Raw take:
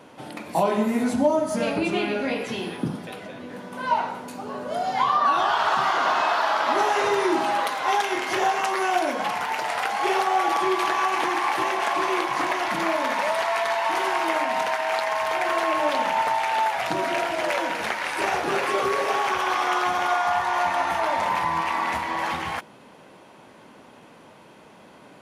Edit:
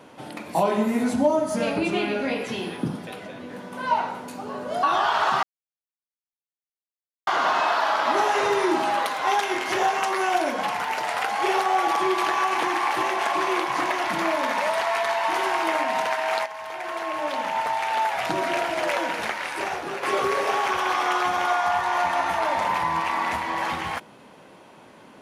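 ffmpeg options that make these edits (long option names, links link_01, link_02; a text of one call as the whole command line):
ffmpeg -i in.wav -filter_complex "[0:a]asplit=5[link_01][link_02][link_03][link_04][link_05];[link_01]atrim=end=4.832[link_06];[link_02]atrim=start=5.278:end=5.88,asetpts=PTS-STARTPTS,afade=type=out:start_time=0.598:duration=0.004:curve=hsin,apad=pad_dur=1.84[link_07];[link_03]atrim=start=5.88:end=15.07,asetpts=PTS-STARTPTS,afade=type=in:duration=0.004:curve=hsin,afade=type=out:start_time=9.186:duration=0.004:curve=hsin:silence=0.237137[link_08];[link_04]atrim=start=15.07:end=18.64,asetpts=PTS-STARTPTS,afade=type=in:duration=1.78:silence=0.237137,afade=type=out:start_time=2.67:duration=0.9:silence=0.375837[link_09];[link_05]atrim=start=18.64,asetpts=PTS-STARTPTS,afade=type=in:duration=0.004:curve=hsin:silence=0.375837[link_10];[link_07][link_08][link_09][link_10]concat=n=4:v=0:a=1[link_11];[link_06][link_11]acrossfade=duration=0.004:curve1=hsin:curve2=hsin" out.wav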